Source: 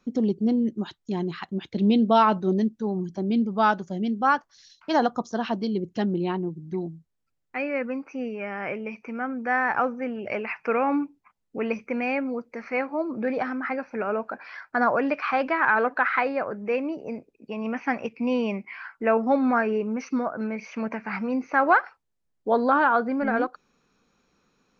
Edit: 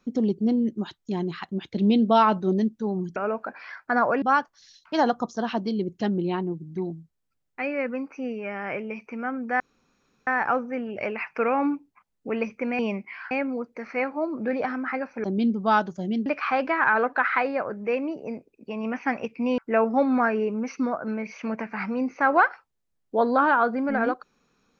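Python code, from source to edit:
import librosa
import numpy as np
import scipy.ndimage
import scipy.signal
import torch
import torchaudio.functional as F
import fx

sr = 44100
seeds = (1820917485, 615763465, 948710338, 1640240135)

y = fx.edit(x, sr, fx.swap(start_s=3.16, length_s=1.02, other_s=14.01, other_length_s=1.06),
    fx.insert_room_tone(at_s=9.56, length_s=0.67),
    fx.move(start_s=18.39, length_s=0.52, to_s=12.08), tone=tone)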